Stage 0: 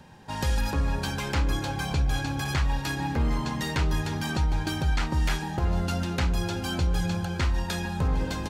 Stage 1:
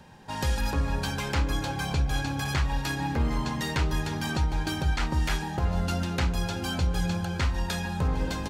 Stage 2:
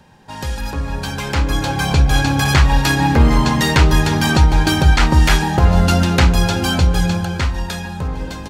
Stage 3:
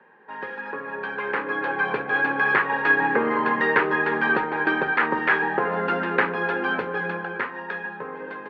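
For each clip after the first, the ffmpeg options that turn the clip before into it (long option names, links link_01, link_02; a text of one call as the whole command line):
ffmpeg -i in.wav -af "bandreject=frequency=50:width_type=h:width=6,bandreject=frequency=100:width_type=h:width=6,bandreject=frequency=150:width_type=h:width=6,bandreject=frequency=200:width_type=h:width=6,bandreject=frequency=250:width_type=h:width=6,bandreject=frequency=300:width_type=h:width=6,bandreject=frequency=350:width_type=h:width=6" out.wav
ffmpeg -i in.wav -af "dynaudnorm=framelen=250:gausssize=13:maxgain=13dB,volume=2.5dB" out.wav
ffmpeg -i in.wav -af "highpass=frequency=250:width=0.5412,highpass=frequency=250:width=1.3066,equalizer=frequency=280:width_type=q:width=4:gain=-6,equalizer=frequency=440:width_type=q:width=4:gain=9,equalizer=frequency=670:width_type=q:width=4:gain=-5,equalizer=frequency=1100:width_type=q:width=4:gain=5,equalizer=frequency=1700:width_type=q:width=4:gain=9,lowpass=frequency=2300:width=0.5412,lowpass=frequency=2300:width=1.3066,volume=-5.5dB" out.wav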